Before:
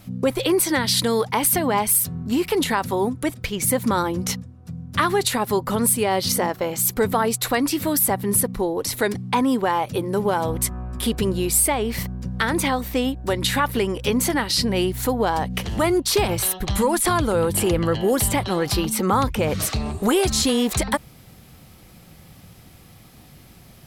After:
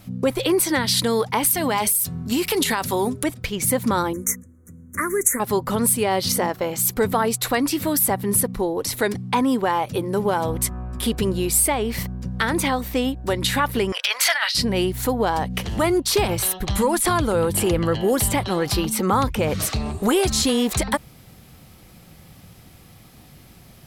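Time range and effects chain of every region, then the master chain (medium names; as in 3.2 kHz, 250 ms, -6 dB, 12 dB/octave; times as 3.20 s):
1.51–3.24 s: treble shelf 2.4 kHz +9.5 dB + de-hum 202.6 Hz, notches 3 + compression 10:1, threshold -16 dBFS
4.13–5.40 s: Chebyshev band-stop 2.1–6.3 kHz, order 4 + treble shelf 4.7 kHz +10 dB + static phaser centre 330 Hz, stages 4
13.92–14.55 s: elliptic high-pass 630 Hz, stop band 70 dB + high-order bell 2.7 kHz +11 dB 2.3 oct + compressor with a negative ratio -21 dBFS
whole clip: none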